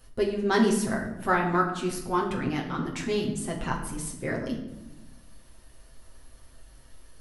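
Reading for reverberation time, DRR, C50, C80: 1.0 s, −1.5 dB, 7.0 dB, 9.5 dB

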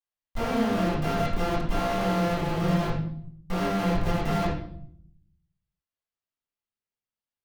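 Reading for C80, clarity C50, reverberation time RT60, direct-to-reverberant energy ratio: 7.5 dB, 4.0 dB, 0.60 s, −11.0 dB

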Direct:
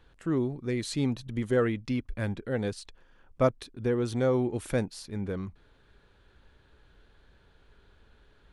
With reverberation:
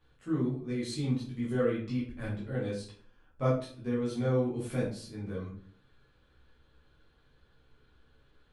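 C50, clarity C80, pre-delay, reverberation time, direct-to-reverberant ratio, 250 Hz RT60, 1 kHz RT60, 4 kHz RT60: 5.0 dB, 9.0 dB, 9 ms, 0.50 s, −8.5 dB, 0.60 s, 0.45 s, 0.35 s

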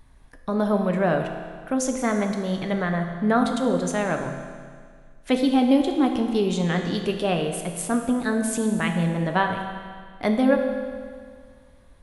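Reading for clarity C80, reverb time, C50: 7.0 dB, 1.9 s, 6.0 dB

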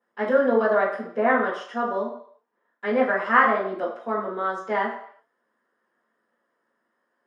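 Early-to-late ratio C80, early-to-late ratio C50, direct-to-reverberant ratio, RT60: 9.0 dB, 4.5 dB, −14.0 dB, 0.60 s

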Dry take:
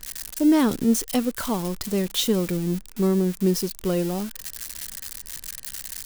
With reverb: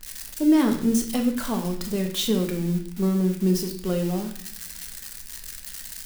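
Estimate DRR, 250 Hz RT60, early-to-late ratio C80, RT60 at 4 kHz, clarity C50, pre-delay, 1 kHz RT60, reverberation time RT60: 2.5 dB, 0.80 s, 11.0 dB, 0.60 s, 7.5 dB, 3 ms, 0.60 s, 0.60 s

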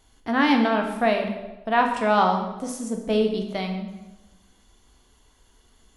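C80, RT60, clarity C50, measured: 8.0 dB, 1.1 s, 6.0 dB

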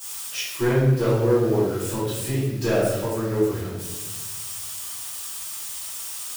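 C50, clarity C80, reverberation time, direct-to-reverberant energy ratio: −0.5 dB, 2.5 dB, 1.2 s, −13.5 dB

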